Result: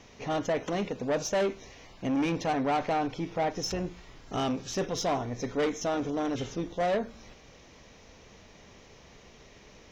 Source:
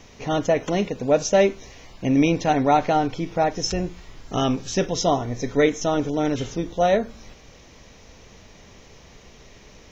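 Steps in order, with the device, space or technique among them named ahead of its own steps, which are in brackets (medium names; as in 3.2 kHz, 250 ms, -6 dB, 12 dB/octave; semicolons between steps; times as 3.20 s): tube preamp driven hard (valve stage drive 20 dB, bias 0.3; bass shelf 120 Hz -5 dB; treble shelf 6.6 kHz -6 dB); trim -3 dB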